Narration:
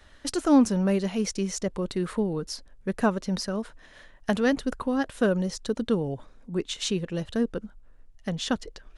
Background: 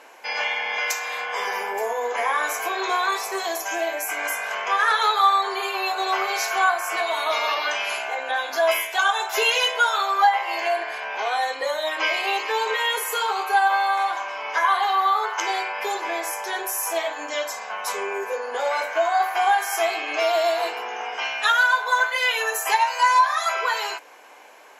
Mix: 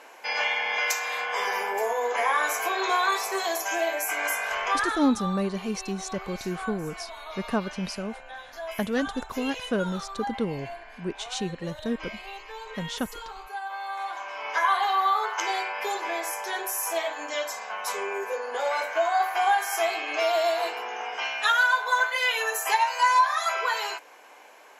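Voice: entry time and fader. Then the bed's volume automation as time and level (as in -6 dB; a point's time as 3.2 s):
4.50 s, -3.5 dB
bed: 4.67 s -1 dB
5.11 s -16.5 dB
13.64 s -16.5 dB
14.46 s -3 dB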